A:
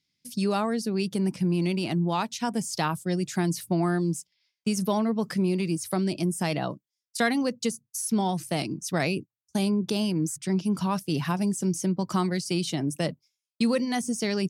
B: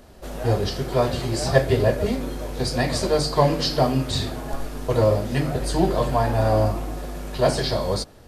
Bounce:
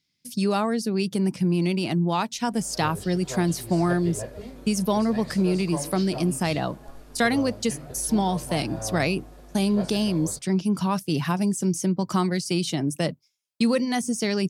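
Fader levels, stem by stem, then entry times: +2.5, -15.5 dB; 0.00, 2.35 s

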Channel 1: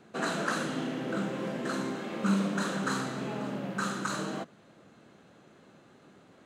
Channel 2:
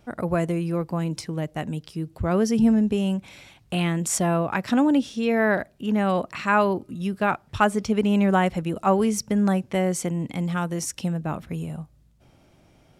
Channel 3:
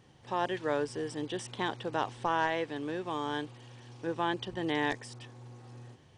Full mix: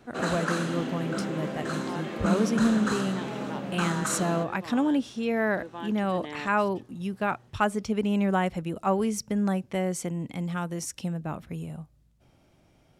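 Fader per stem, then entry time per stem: +1.0, -5.0, -8.0 dB; 0.00, 0.00, 1.55 s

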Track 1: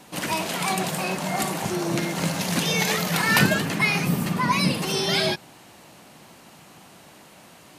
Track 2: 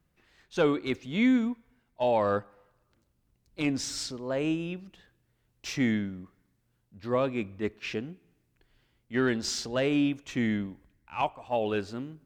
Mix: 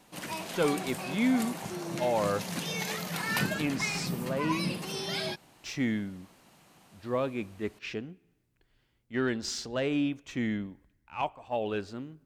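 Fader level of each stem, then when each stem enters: -11.0, -3.0 dB; 0.00, 0.00 s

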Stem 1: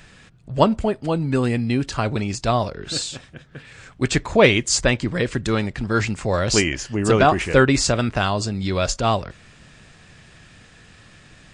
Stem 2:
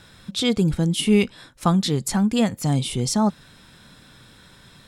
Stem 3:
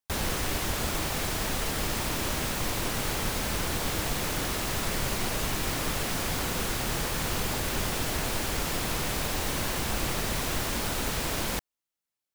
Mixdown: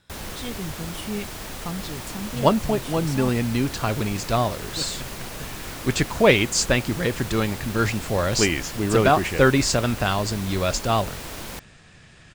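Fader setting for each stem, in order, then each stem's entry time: -2.0, -13.5, -5.0 dB; 1.85, 0.00, 0.00 s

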